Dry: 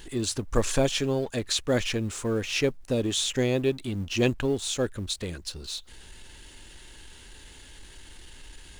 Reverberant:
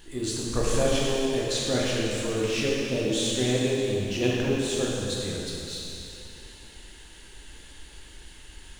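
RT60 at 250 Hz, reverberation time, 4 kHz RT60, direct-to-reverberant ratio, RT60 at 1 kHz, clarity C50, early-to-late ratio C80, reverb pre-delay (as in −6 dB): 2.9 s, 2.9 s, 2.7 s, −5.5 dB, 2.9 s, −3.0 dB, −1.0 dB, 6 ms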